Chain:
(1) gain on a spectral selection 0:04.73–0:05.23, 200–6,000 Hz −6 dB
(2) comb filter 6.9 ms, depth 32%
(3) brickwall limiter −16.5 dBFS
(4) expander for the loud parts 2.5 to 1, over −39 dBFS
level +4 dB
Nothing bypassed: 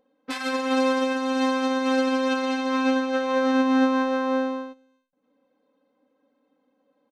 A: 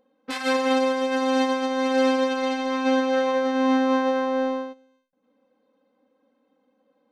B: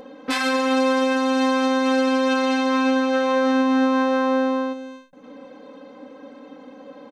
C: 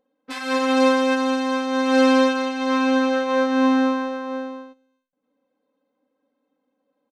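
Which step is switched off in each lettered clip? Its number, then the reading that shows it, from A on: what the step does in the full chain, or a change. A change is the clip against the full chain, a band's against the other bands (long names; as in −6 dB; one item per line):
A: 2, 250 Hz band −2.0 dB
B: 4, change in crest factor −3.5 dB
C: 3, average gain reduction 1.5 dB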